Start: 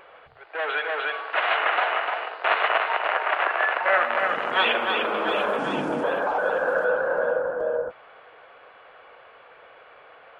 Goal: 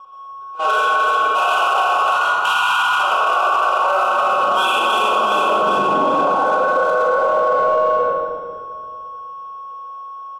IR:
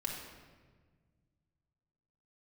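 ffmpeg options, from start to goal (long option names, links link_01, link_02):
-filter_complex "[0:a]aeval=exprs='val(0)+0.0501*sin(2*PI*1100*n/s)':channel_layout=same,asettb=1/sr,asplit=3[link_01][link_02][link_03];[link_01]atrim=end=2.074[link_04];[link_02]atrim=start=2.07:end=2.98,asetpts=PTS-STARTPTS,afade=type=in:duration=0.004:curve=qsin,afade=type=out:start_time=0.906:duration=0.004:curve=qsin,afreqshift=340[link_05];[link_03]atrim=start=2.976[link_06];[link_04][link_05]acrossfade=duration=0.004:curve1=hsin:curve2=qsin[link_07];[link_07][link_06]acrossfade=duration=0.004:curve1=qsin:curve2=hsin,asuperstop=centerf=1900:order=20:qfactor=2.2,equalizer=frequency=2200:width=6.2:gain=-8.5,aecho=1:1:45|63|121:0.708|0.473|0.422,adynamicsmooth=sensitivity=6:basefreq=1800,agate=range=-20dB:threshold=-25dB:ratio=16:detection=peak,lowshelf=frequency=350:gain=-6[link_08];[1:a]atrim=start_sample=2205,asetrate=29988,aresample=44100[link_09];[link_08][link_09]afir=irnorm=-1:irlink=0,alimiter=level_in=15.5dB:limit=-1dB:release=50:level=0:latency=1,volume=-7.5dB"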